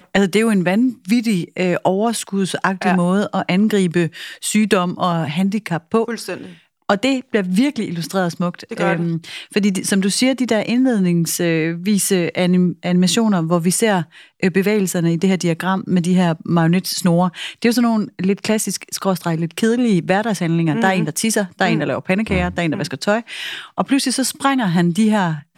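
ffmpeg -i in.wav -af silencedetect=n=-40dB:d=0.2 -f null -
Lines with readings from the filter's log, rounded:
silence_start: 6.59
silence_end: 6.89 | silence_duration: 0.31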